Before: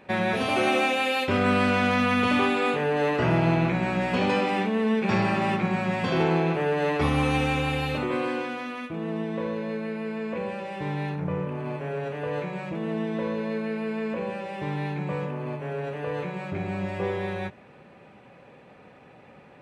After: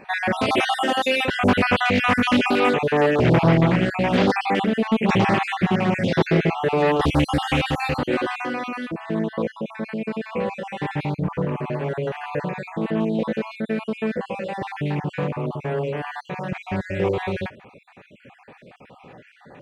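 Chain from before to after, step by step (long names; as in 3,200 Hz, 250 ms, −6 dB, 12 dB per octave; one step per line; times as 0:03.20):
time-frequency cells dropped at random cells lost 45%
highs frequency-modulated by the lows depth 0.44 ms
level +7 dB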